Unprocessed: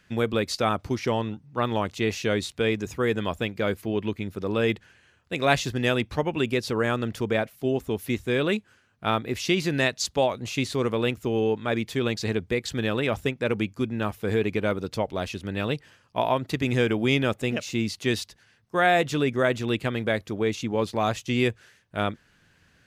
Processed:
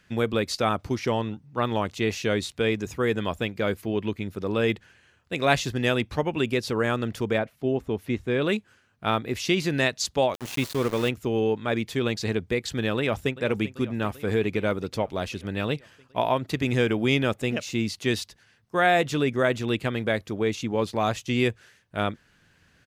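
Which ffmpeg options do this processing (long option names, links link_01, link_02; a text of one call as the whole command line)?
ffmpeg -i in.wav -filter_complex "[0:a]asettb=1/sr,asplit=3[link_01][link_02][link_03];[link_01]atrim=end=7.384[link_04];[link_02]atrim=start=7.38:end=8.42,asetpts=PTS-STARTPTS,afade=type=in:duration=0.004:curve=qsin,afade=type=out:start_time=1.036:duration=0.004:curve=qsin,lowpass=frequency=2200:poles=1[link_05];[link_03]atrim=start=8.416[link_06];[link_04][link_05]acrossfade=duration=0.004:curve1=hsin:curve2=qsin[link_07];[link_07][link_06]acrossfade=duration=0.004:curve1=qsin:curve2=hsin,asettb=1/sr,asplit=3[link_08][link_09][link_10];[link_08]atrim=end=10.344[link_11];[link_09]atrim=start=10.34:end=11.09,asetpts=PTS-STARTPTS,afade=type=in:duration=0.004:curve=qsin,afade=type=out:start_time=0.746:duration=0.004:curve=qsin,aeval=exprs='val(0)*gte(abs(val(0)),0.0282)':channel_layout=same[link_12];[link_10]atrim=start=11.086[link_13];[link_11][link_12]acrossfade=duration=0.004:curve1=hsin:curve2=qsin[link_14];[link_14][link_13]acrossfade=duration=0.004:curve1=qsin:curve2=hsin,asplit=2[link_15][link_16];[link_16]afade=type=in:start_time=12.97:duration=0.01,afade=type=out:start_time=13.38:duration=0.01,aecho=0:1:390|780|1170|1560|1950|2340|2730|3120|3510|3900:0.16788|0.12591|0.0944327|0.0708245|0.0531184|0.0398388|0.0298791|0.0224093|0.016807|0.0126052[link_17];[link_15][link_17]amix=inputs=2:normalize=0" out.wav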